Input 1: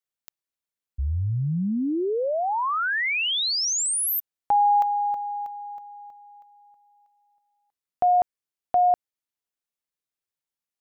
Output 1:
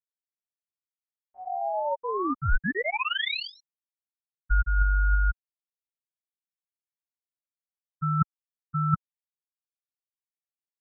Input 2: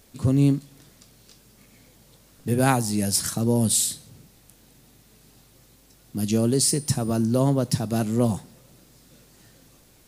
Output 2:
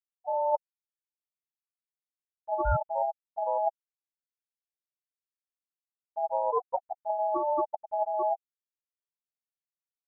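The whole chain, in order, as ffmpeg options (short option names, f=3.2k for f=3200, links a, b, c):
-filter_complex "[0:a]asplit=2[a][b];[b]adynamicsmooth=sensitivity=7:basefreq=2k,volume=2dB[c];[a][c]amix=inputs=2:normalize=0,bandreject=f=1k:w=15,adynamicequalizer=threshold=0.0141:dfrequency=310:dqfactor=6.4:tfrequency=310:tqfactor=6.4:attack=5:release=100:ratio=0.375:range=3.5:mode=boostabove:tftype=bell,flanger=delay=3.7:depth=1.8:regen=-11:speed=0.39:shape=sinusoidal,asplit=2[d][e];[e]adelay=163.3,volume=-27dB,highshelf=f=4k:g=-3.67[f];[d][f]amix=inputs=2:normalize=0,asoftclip=type=tanh:threshold=-6dB,aeval=exprs='0.473*(cos(1*acos(clip(val(0)/0.473,-1,1)))-cos(1*PI/2))+0.0211*(cos(4*acos(clip(val(0)/0.473,-1,1)))-cos(4*PI/2))+0.0168*(cos(8*acos(clip(val(0)/0.473,-1,1)))-cos(8*PI/2))':c=same,afftfilt=real='re*gte(hypot(re,im),0.891)':imag='im*gte(hypot(re,im),0.891)':win_size=1024:overlap=0.75,highpass=f=200:t=q:w=0.5412,highpass=f=200:t=q:w=1.307,lowpass=f=3.5k:t=q:w=0.5176,lowpass=f=3.5k:t=q:w=0.7071,lowpass=f=3.5k:t=q:w=1.932,afreqshift=-130,areverse,acompressor=threshold=-26dB:ratio=10:attack=47:release=168:knee=1:detection=peak,areverse,aeval=exprs='val(0)*sin(2*PI*740*n/s)':c=same,lowshelf=f=100:g=11.5,volume=1dB"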